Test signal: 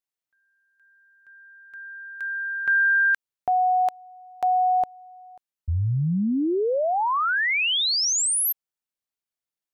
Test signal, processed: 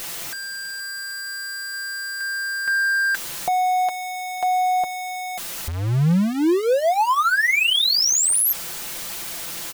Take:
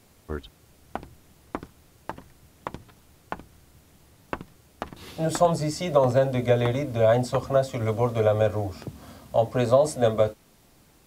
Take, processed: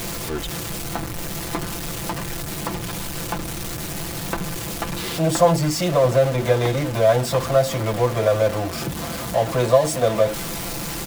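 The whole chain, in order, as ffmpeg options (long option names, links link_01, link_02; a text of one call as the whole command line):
ffmpeg -i in.wav -af "aeval=exprs='val(0)+0.5*0.0631*sgn(val(0))':channel_layout=same,aecho=1:1:5.9:0.56" out.wav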